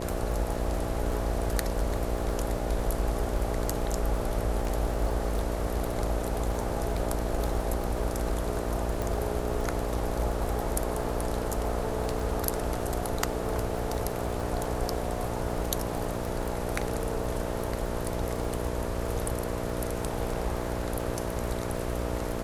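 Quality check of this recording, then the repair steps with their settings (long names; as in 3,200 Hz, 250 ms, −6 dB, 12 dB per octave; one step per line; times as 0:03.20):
mains buzz 60 Hz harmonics 11 −34 dBFS
surface crackle 35 per second −33 dBFS
0:09.02: click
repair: click removal
hum removal 60 Hz, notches 11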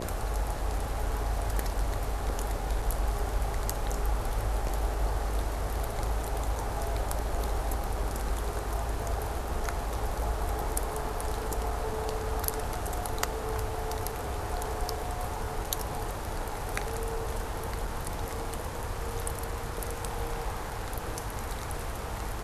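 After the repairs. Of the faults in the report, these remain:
0:09.02: click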